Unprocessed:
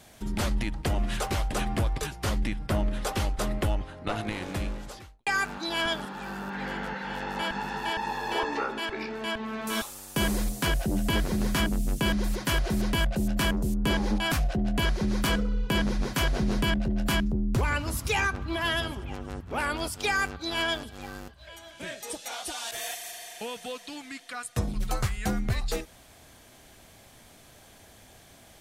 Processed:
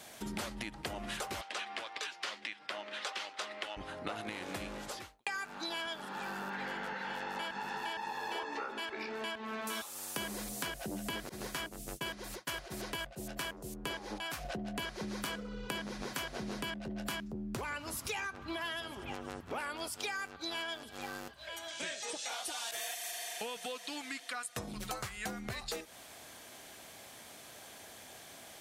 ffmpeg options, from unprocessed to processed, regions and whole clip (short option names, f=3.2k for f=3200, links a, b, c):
-filter_complex "[0:a]asettb=1/sr,asplit=3[a][b][c];[a]atrim=end=1.414[d];[b]atrim=start=1.41:end=3.77,asetpts=PTS-STARTPTS,afade=t=in:d=0.004:c=qsin,afade=t=out:st=2.356:d=0.004:c=qsin,highpass=380,lowpass=3.7k,tiltshelf=f=1.4k:g=-8[e];[c]atrim=start=3.766[f];[d][e]acrossfade=d=0.004:c1=hsin:c2=qsin[g];[g][f]acrossfade=d=0.004:c1=qsin:c2=hsin,asettb=1/sr,asplit=3[h][i][j];[h]atrim=end=11.294[k];[i]atrim=start=11.29:end=14.45,asetpts=PTS-STARTPTS,afade=t=in:d=0.004:c=qsin,afade=t=out:st=3.156:d=0.004:c=qsin,agate=range=-33dB:threshold=-22dB:ratio=3:release=100:detection=peak,equalizer=f=220:t=o:w=0.44:g=-9.5[l];[j]atrim=start=14.446[m];[k][l]acrossfade=d=0.004:c1=hsin:c2=qsin[n];[n][m]acrossfade=d=0.004:c1=qsin:c2=hsin,asettb=1/sr,asplit=3[o][p][q];[o]atrim=end=21.684[r];[p]atrim=start=21.68:end=22.29,asetpts=PTS-STARTPTS,afade=t=in:d=0.004:c=qsin,afade=t=out:st=0.606:d=0.004:c=qsin,aemphasis=mode=production:type=75fm,acrossover=split=3300[s][t];[t]acompressor=threshold=-34dB:ratio=4:attack=1:release=60[u];[s][u]amix=inputs=2:normalize=0,lowpass=f=7.4k:w=0.5412,lowpass=f=7.4k:w=1.3066[v];[q]atrim=start=22.286[w];[r][v]acrossfade=d=0.004:c1=hsin:c2=qsin[x];[x][w]acrossfade=d=0.004:c1=qsin:c2=hsin,highpass=f=400:p=1,acompressor=threshold=-40dB:ratio=6,volume=3dB"